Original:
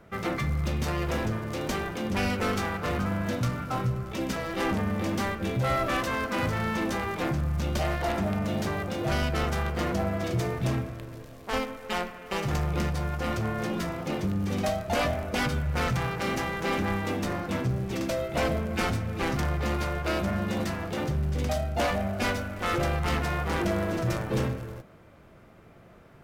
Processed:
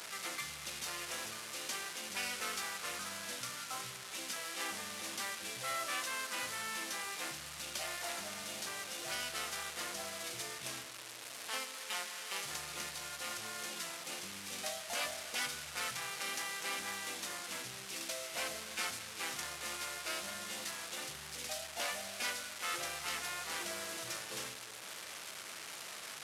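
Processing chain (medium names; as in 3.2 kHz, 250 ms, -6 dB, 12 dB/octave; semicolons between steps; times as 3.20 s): one-bit delta coder 64 kbps, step -30 dBFS; low-pass 3.6 kHz 6 dB/octave; differentiator; trim +4.5 dB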